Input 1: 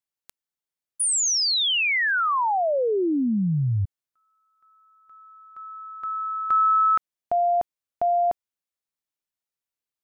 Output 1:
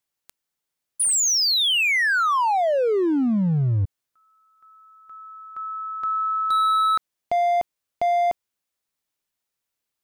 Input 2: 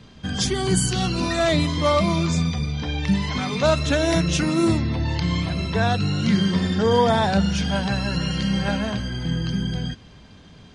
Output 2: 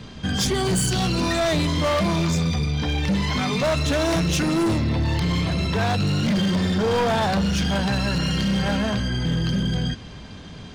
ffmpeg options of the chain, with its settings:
-filter_complex "[0:a]asplit=2[a][b];[b]acompressor=threshold=-32dB:ratio=12:attack=0.54:release=20,volume=3dB[c];[a][c]amix=inputs=2:normalize=0,asoftclip=type=hard:threshold=-18dB"

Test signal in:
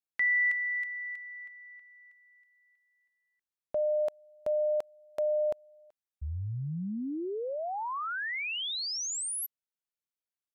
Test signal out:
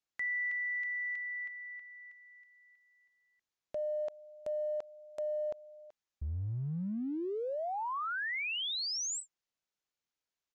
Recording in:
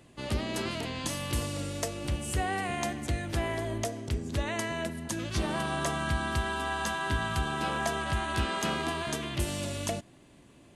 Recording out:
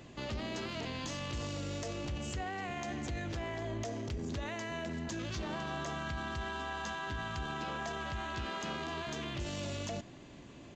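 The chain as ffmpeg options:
-af "aresample=16000,aresample=44100,acompressor=threshold=-39dB:ratio=5:attack=0.13:release=26:knee=1:detection=rms,volume=4.5dB"

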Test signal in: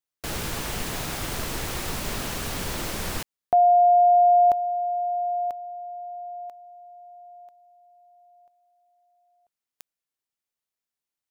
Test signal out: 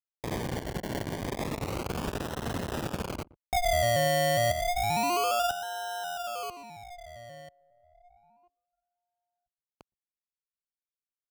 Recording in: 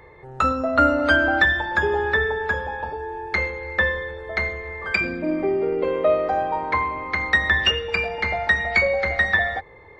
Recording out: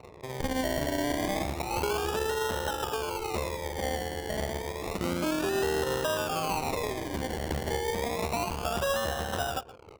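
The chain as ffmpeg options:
-filter_complex "[0:a]lowpass=f=1k:w=0.5412,lowpass=f=1k:w=1.3066,aeval=exprs='max(val(0),0)':c=same,highpass=65,asplit=2[a][b];[b]acompressor=threshold=-31dB:ratio=6:attack=8.3:release=732:knee=6:detection=rms,volume=0dB[c];[a][c]amix=inputs=2:normalize=0,alimiter=limit=-20dB:level=0:latency=1:release=132,acrusher=samples=27:mix=1:aa=0.000001:lfo=1:lforange=16.2:lforate=0.3,aecho=1:1:120:0.133,anlmdn=0.01"

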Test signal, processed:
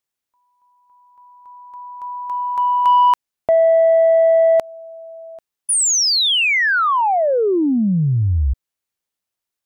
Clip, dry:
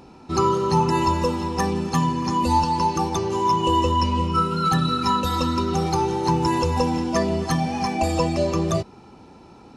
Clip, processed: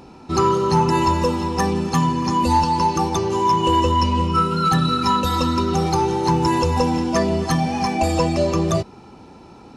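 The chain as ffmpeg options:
-af "acontrast=89,volume=-4dB"

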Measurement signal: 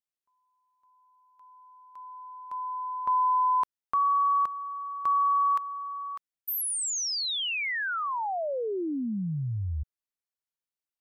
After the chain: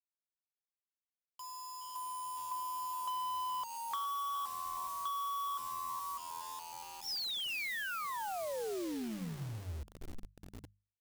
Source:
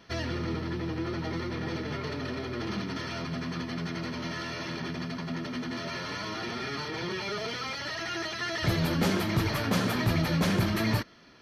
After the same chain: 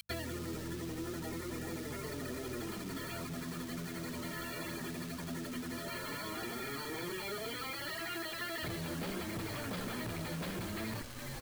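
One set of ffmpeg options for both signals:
-filter_complex "[0:a]acrossover=split=480|2200[a][b][c];[c]acompressor=mode=upward:threshold=-46dB:ratio=2.5:attack=61:release=396:knee=2.83:detection=peak[d];[a][b][d]amix=inputs=3:normalize=0,afftfilt=real='re*gte(hypot(re,im),0.0178)':imag='im*gte(hypot(re,im),0.0178)':win_size=1024:overlap=0.75,asplit=5[e][f][g][h][i];[f]adelay=417,afreqshift=-84,volume=-12dB[j];[g]adelay=834,afreqshift=-168,volume=-20.2dB[k];[h]adelay=1251,afreqshift=-252,volume=-28.4dB[l];[i]adelay=1668,afreqshift=-336,volume=-36.5dB[m];[e][j][k][l][m]amix=inputs=5:normalize=0,aresample=11025,volume=24.5dB,asoftclip=hard,volume=-24.5dB,aresample=44100,acompressor=threshold=-44dB:ratio=4:attack=49:release=442:knee=6:detection=rms,bass=f=250:g=-8,treble=f=4k:g=-7,acrusher=bits=8:mix=0:aa=0.000001,equalizer=f=1.1k:w=0.32:g=-7,bandreject=f=50:t=h:w=6,bandreject=f=100:t=h:w=6,bandreject=f=150:t=h:w=6,bandreject=f=200:t=h:w=6,volume=10dB"

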